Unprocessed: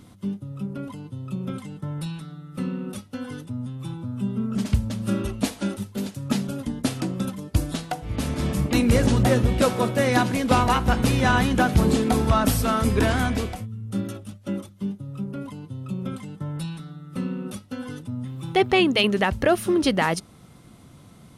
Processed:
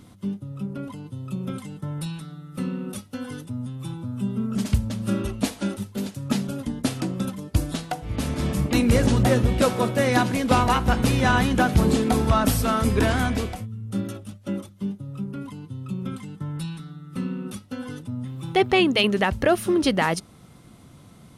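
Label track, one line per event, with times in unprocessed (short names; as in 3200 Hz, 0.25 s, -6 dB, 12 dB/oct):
1.060000	4.780000	high shelf 6400 Hz +5.5 dB
15.190000	17.610000	bell 610 Hz -7.5 dB 0.56 oct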